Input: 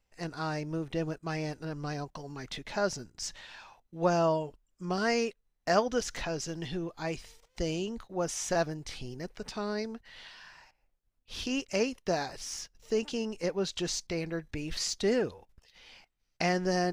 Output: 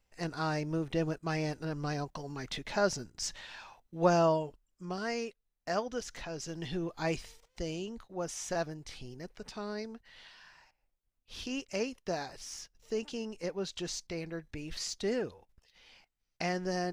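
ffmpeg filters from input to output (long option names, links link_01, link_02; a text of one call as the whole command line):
ffmpeg -i in.wav -af "volume=10.5dB,afade=type=out:start_time=4.14:duration=0.86:silence=0.398107,afade=type=in:start_time=6.28:duration=0.85:silence=0.334965,afade=type=out:start_time=7.13:duration=0.48:silence=0.421697" out.wav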